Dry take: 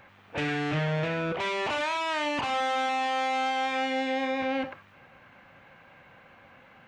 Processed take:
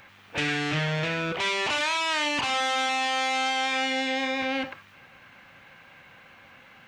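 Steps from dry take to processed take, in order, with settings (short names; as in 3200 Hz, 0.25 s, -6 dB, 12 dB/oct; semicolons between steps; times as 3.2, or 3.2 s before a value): EQ curve 360 Hz 0 dB, 600 Hz -2 dB, 5300 Hz +10 dB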